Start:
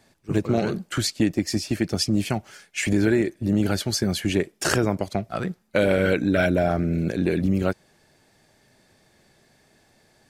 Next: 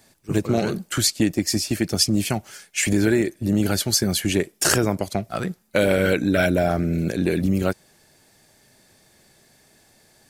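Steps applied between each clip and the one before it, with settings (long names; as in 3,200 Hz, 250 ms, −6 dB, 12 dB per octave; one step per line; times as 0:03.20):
high-shelf EQ 6,400 Hz +12 dB
level +1 dB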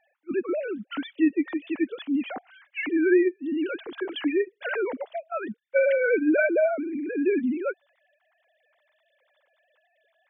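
three sine waves on the formant tracks
level −4 dB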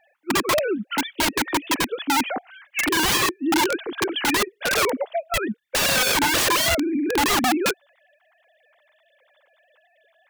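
wrap-around overflow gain 23 dB
level +7.5 dB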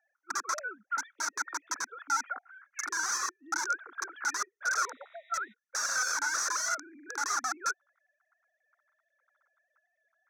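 sound drawn into the spectrogram noise, 0:04.78–0:05.54, 1,800–3,900 Hz −39 dBFS
pair of resonant band-passes 2,900 Hz, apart 2.1 octaves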